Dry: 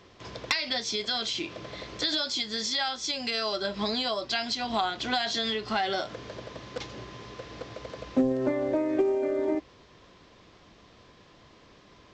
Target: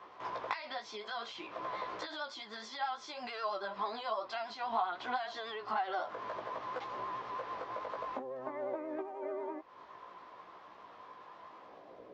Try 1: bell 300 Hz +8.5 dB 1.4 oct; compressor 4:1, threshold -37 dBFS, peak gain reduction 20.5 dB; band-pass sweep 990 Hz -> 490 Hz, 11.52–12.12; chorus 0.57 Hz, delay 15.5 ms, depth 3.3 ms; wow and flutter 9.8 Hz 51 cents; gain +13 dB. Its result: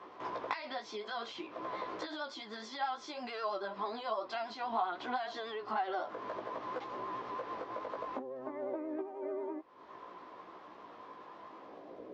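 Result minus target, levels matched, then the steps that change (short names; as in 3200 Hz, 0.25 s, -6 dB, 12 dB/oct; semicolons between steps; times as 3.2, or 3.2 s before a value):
250 Hz band +4.0 dB
remove: bell 300 Hz +8.5 dB 1.4 oct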